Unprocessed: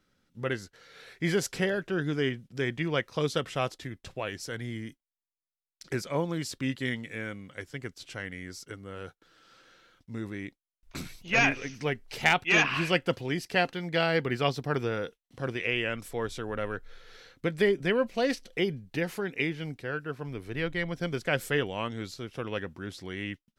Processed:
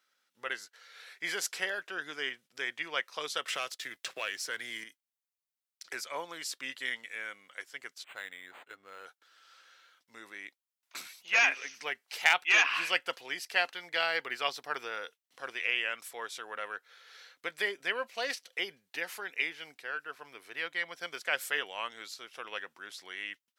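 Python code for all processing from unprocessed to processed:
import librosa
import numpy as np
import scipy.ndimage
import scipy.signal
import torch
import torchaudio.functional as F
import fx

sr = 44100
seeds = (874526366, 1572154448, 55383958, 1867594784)

y = fx.chain(x, sr, fx.peak_eq(hz=850.0, db=-7.5, octaves=0.69),
    fx.leveller(passes=1),
    fx.band_squash(depth_pct=100), at=(3.48, 4.84))
y = fx.chain(y, sr, fx.low_shelf(hz=80.0, db=9.0),
    fx.resample_linear(factor=8), at=(8.04, 9.06))
y = scipy.signal.sosfilt(scipy.signal.butter(2, 930.0, 'highpass', fs=sr, output='sos'), y)
y = fx.high_shelf(y, sr, hz=12000.0, db=4.0)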